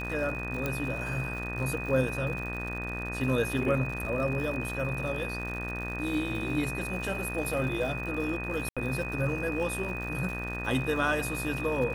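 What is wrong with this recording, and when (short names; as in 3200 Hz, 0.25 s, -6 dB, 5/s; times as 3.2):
buzz 60 Hz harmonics 32 -37 dBFS
crackle 130/s -37 dBFS
tone 2500 Hz -36 dBFS
0.66 pop -16 dBFS
8.69–8.77 gap 76 ms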